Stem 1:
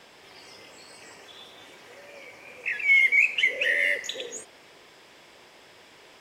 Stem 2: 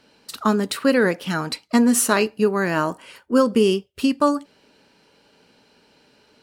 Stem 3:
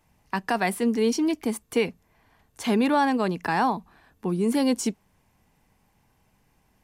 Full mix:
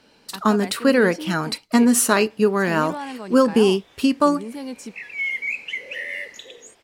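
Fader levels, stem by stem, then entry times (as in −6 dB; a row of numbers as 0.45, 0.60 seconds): −6.5, +1.0, −10.0 decibels; 2.30, 0.00, 0.00 seconds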